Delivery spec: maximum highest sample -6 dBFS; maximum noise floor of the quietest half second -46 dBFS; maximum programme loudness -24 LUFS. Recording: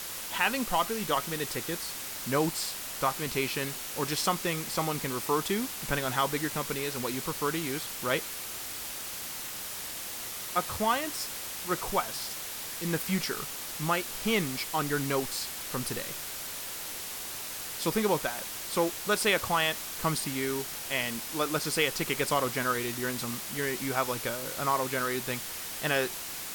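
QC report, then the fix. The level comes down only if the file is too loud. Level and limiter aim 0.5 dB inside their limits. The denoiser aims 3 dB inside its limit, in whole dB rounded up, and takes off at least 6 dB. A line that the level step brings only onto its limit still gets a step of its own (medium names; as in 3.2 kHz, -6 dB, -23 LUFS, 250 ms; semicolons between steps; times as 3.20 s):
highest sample -11.5 dBFS: pass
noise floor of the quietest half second -39 dBFS: fail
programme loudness -30.5 LUFS: pass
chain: noise reduction 10 dB, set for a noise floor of -39 dBFS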